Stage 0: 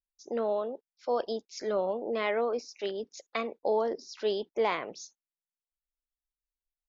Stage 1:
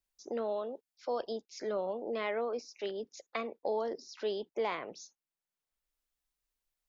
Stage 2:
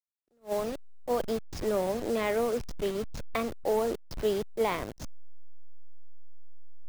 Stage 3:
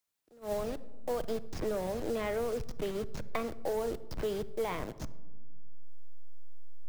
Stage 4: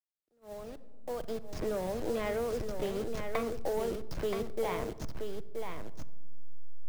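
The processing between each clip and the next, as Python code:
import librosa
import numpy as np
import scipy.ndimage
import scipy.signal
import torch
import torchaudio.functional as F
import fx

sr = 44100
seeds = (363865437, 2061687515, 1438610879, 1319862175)

y1 = fx.band_squash(x, sr, depth_pct=40)
y1 = y1 * 10.0 ** (-5.0 / 20.0)
y2 = fx.delta_hold(y1, sr, step_db=-40.0)
y2 = fx.low_shelf(y2, sr, hz=250.0, db=9.0)
y2 = fx.attack_slew(y2, sr, db_per_s=340.0)
y2 = y2 * 10.0 ** (4.5 / 20.0)
y3 = fx.leveller(y2, sr, passes=1)
y3 = fx.room_shoebox(y3, sr, seeds[0], volume_m3=2600.0, walls='furnished', distance_m=0.55)
y3 = fx.band_squash(y3, sr, depth_pct=70)
y3 = y3 * 10.0 ** (-8.5 / 20.0)
y4 = fx.fade_in_head(y3, sr, length_s=1.77)
y4 = y4 + 10.0 ** (-6.0 / 20.0) * np.pad(y4, (int(976 * sr / 1000.0), 0))[:len(y4)]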